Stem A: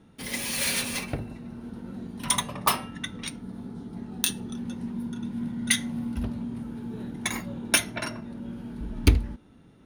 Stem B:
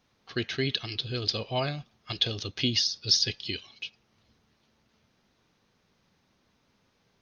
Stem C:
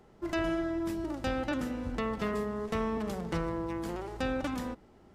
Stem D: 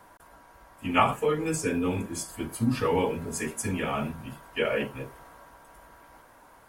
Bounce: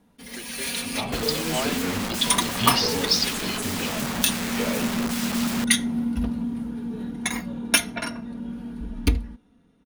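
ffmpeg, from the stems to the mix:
-filter_complex "[0:a]aecho=1:1:4.2:0.56,volume=0.422[s0];[1:a]highpass=410,volume=0.376[s1];[2:a]aeval=exprs='(mod(84.1*val(0)+1,2)-1)/84.1':c=same,adelay=900,volume=1.26[s2];[3:a]equalizer=f=1300:t=o:w=0.94:g=-13.5,volume=0.251[s3];[s0][s1][s2][s3]amix=inputs=4:normalize=0,dynaudnorm=f=190:g=11:m=3.76"

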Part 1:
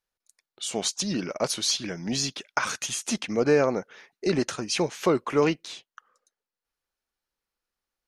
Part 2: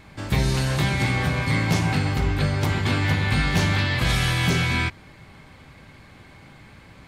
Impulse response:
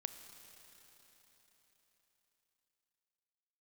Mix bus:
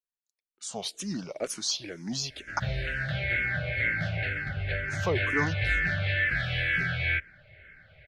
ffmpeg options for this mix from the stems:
-filter_complex "[0:a]agate=range=0.2:threshold=0.00224:ratio=16:detection=peak,volume=0.596,asplit=3[s0][s1][s2];[s0]atrim=end=2.6,asetpts=PTS-STARTPTS,afade=t=out:st=2.596:d=0.004:c=hsin[s3];[s1]atrim=start=2.6:end=4.88,asetpts=PTS-STARTPTS,volume=0[s4];[s2]atrim=start=4.88,asetpts=PTS-STARTPTS,afade=t=in:d=0.004:c=hsin[s5];[s3][s4][s5]concat=n=3:v=0:a=1,asplit=2[s6][s7];[s7]volume=0.2[s8];[1:a]firequalizer=gain_entry='entry(100,0);entry(250,-14);entry(620,6);entry(990,-28);entry(1500,11);entry(6700,-23)':delay=0.05:min_phase=1,adelay=2300,volume=0.531[s9];[2:a]atrim=start_sample=2205[s10];[s8][s10]afir=irnorm=-1:irlink=0[s11];[s6][s9][s11]amix=inputs=3:normalize=0,asplit=2[s12][s13];[s13]afreqshift=-2.1[s14];[s12][s14]amix=inputs=2:normalize=1"

